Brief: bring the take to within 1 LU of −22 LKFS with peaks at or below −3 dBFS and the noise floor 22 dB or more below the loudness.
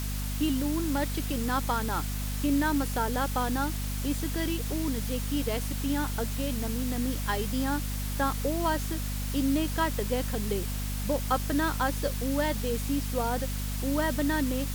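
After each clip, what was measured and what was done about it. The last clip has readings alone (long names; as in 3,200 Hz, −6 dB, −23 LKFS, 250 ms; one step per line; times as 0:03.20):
mains hum 50 Hz; hum harmonics up to 250 Hz; level of the hum −30 dBFS; background noise floor −32 dBFS; target noise floor −52 dBFS; integrated loudness −29.5 LKFS; sample peak −13.0 dBFS; target loudness −22.0 LKFS
→ hum removal 50 Hz, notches 5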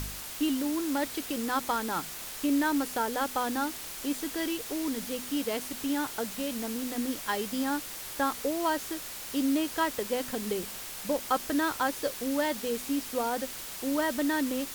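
mains hum none found; background noise floor −41 dBFS; target noise floor −53 dBFS
→ noise reduction from a noise print 12 dB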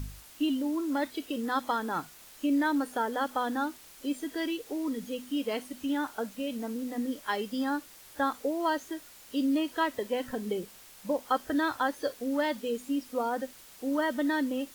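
background noise floor −52 dBFS; target noise floor −54 dBFS
→ noise reduction from a noise print 6 dB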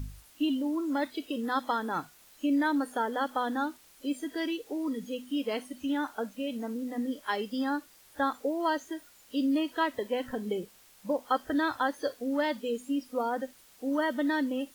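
background noise floor −58 dBFS; integrated loudness −31.5 LKFS; sample peak −14.0 dBFS; target loudness −22.0 LKFS
→ level +9.5 dB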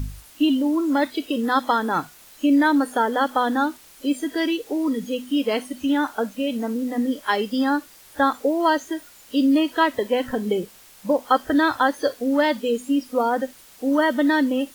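integrated loudness −22.0 LKFS; sample peak −4.5 dBFS; background noise floor −49 dBFS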